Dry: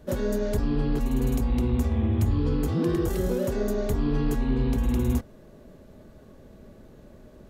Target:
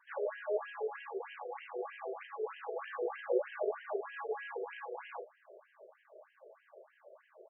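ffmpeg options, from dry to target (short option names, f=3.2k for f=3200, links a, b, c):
-filter_complex "[0:a]asplit=2[a][b];[b]adelay=35,volume=-6.5dB[c];[a][c]amix=inputs=2:normalize=0,bandreject=f=69.28:t=h:w=4,bandreject=f=138.56:t=h:w=4,bandreject=f=207.84:t=h:w=4,bandreject=f=277.12:t=h:w=4,bandreject=f=346.4:t=h:w=4,bandreject=f=415.68:t=h:w=4,bandreject=f=484.96:t=h:w=4,bandreject=f=554.24:t=h:w=4,afftfilt=real='re*between(b*sr/1024,490*pow(2300/490,0.5+0.5*sin(2*PI*3.2*pts/sr))/1.41,490*pow(2300/490,0.5+0.5*sin(2*PI*3.2*pts/sr))*1.41)':imag='im*between(b*sr/1024,490*pow(2300/490,0.5+0.5*sin(2*PI*3.2*pts/sr))/1.41,490*pow(2300/490,0.5+0.5*sin(2*PI*3.2*pts/sr))*1.41)':win_size=1024:overlap=0.75,volume=1dB"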